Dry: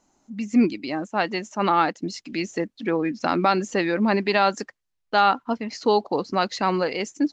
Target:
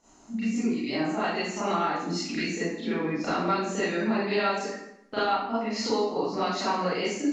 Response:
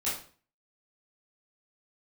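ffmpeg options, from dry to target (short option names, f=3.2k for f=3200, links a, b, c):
-filter_complex "[0:a]acompressor=threshold=-37dB:ratio=4[a];[1:a]atrim=start_sample=2205,asetrate=22491,aresample=44100[b];[a][b]afir=irnorm=-1:irlink=0,volume=-1dB"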